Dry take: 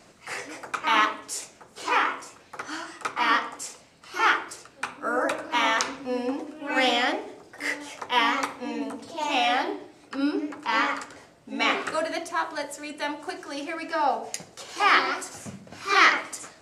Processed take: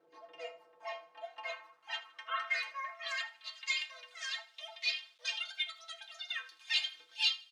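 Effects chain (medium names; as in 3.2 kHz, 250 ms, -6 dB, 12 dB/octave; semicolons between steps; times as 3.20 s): fade out at the end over 0.68 s; distance through air 230 m; inharmonic resonator 72 Hz, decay 0.51 s, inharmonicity 0.008; feedback delay 174 ms, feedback 31%, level -18.5 dB; wide varispeed 2.21×; bit crusher 11-bit; band-pass sweep 450 Hz -> 3.4 kHz, 0.40–3.74 s; trim +6.5 dB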